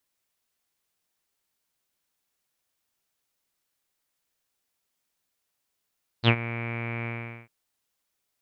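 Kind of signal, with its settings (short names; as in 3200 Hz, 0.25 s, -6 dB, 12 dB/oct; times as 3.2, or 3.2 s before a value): synth note saw A#2 24 dB/oct, low-pass 2300 Hz, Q 10, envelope 1 oct, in 0.08 s, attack 53 ms, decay 0.07 s, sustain -16 dB, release 0.42 s, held 0.83 s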